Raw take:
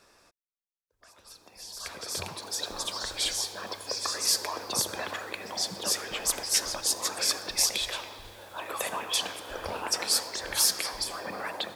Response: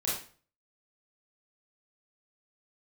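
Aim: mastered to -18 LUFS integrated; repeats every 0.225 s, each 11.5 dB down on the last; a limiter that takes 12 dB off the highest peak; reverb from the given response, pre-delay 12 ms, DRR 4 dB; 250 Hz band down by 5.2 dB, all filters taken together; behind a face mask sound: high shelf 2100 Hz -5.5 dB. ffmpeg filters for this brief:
-filter_complex "[0:a]equalizer=f=250:t=o:g=-7.5,alimiter=limit=-21.5dB:level=0:latency=1,aecho=1:1:225|450|675:0.266|0.0718|0.0194,asplit=2[a][b];[1:a]atrim=start_sample=2205,adelay=12[c];[b][c]afir=irnorm=-1:irlink=0,volume=-10dB[d];[a][d]amix=inputs=2:normalize=0,highshelf=f=2.1k:g=-5.5,volume=17dB"

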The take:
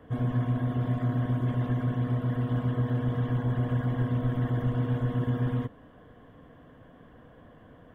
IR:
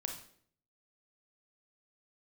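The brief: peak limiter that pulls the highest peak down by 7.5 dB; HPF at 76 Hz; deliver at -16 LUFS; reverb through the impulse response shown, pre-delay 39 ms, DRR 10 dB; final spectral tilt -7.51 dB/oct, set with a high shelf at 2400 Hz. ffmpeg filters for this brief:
-filter_complex "[0:a]highpass=76,highshelf=f=2.4k:g=6.5,alimiter=limit=-24dB:level=0:latency=1,asplit=2[a][b];[1:a]atrim=start_sample=2205,adelay=39[c];[b][c]afir=irnorm=-1:irlink=0,volume=-10dB[d];[a][d]amix=inputs=2:normalize=0,volume=15.5dB"

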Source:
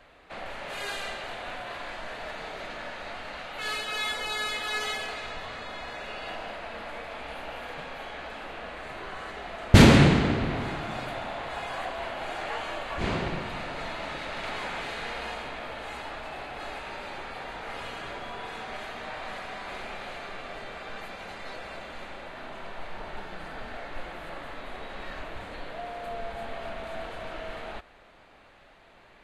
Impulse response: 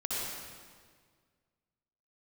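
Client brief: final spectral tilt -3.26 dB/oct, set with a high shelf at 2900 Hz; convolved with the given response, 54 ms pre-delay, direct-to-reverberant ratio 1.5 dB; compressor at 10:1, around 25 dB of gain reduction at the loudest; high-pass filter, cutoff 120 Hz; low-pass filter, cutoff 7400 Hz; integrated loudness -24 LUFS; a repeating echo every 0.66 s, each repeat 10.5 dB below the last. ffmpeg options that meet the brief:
-filter_complex "[0:a]highpass=120,lowpass=7.4k,highshelf=f=2.9k:g=6.5,acompressor=threshold=-37dB:ratio=10,aecho=1:1:660|1320|1980:0.299|0.0896|0.0269,asplit=2[a][b];[1:a]atrim=start_sample=2205,adelay=54[c];[b][c]afir=irnorm=-1:irlink=0,volume=-7dB[d];[a][d]amix=inputs=2:normalize=0,volume=13dB"

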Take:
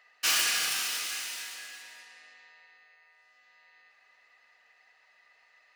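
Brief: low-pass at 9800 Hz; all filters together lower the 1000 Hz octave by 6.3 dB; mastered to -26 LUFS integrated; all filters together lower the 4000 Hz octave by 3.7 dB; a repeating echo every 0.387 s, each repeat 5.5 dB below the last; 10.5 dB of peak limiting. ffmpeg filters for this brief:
-af "lowpass=9.8k,equalizer=f=1k:t=o:g=-8.5,equalizer=f=4k:t=o:g=-4.5,alimiter=level_in=3dB:limit=-24dB:level=0:latency=1,volume=-3dB,aecho=1:1:387|774|1161|1548|1935|2322|2709:0.531|0.281|0.149|0.079|0.0419|0.0222|0.0118,volume=10dB"

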